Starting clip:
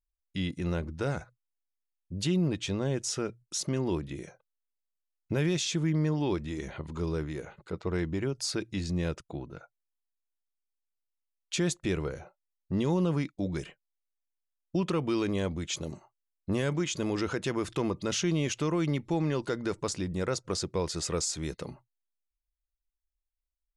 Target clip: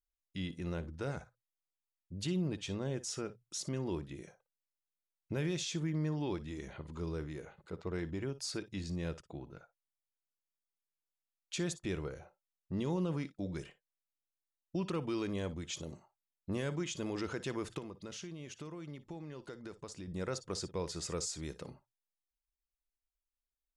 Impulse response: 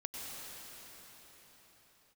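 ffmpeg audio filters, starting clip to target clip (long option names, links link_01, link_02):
-filter_complex "[0:a]asettb=1/sr,asplit=3[link_01][link_02][link_03];[link_01]atrim=end=17.784[link_04];[link_02]atrim=start=17.78:end=20.08,asetpts=PTS-STARTPTS,afade=type=in:duration=0.004:curve=qsin,afade=type=out:start_time=2.296:duration=0.004:curve=qsin,acompressor=threshold=-36dB:ratio=6[link_05];[link_03]atrim=start=20.076[link_06];[link_04][link_05]acrossfade=duration=0.004:curve1=hsin:curve2=qsin[link_07];[link_07][link_06]acrossfade=duration=0.004:curve1=qsin:curve2=hsin[link_08];[1:a]atrim=start_sample=2205,afade=type=out:start_time=0.14:duration=0.01,atrim=end_sample=6615,asetrate=70560,aresample=44100[link_09];[link_08][link_09]afir=irnorm=-1:irlink=0,volume=1dB"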